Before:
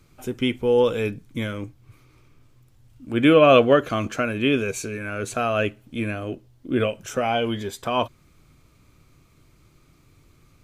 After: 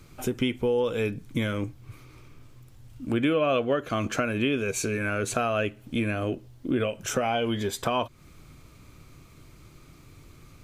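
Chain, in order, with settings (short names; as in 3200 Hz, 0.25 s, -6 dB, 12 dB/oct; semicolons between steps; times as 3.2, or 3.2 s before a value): compressor 4:1, threshold -30 dBFS, peak gain reduction 16.5 dB; gain +5.5 dB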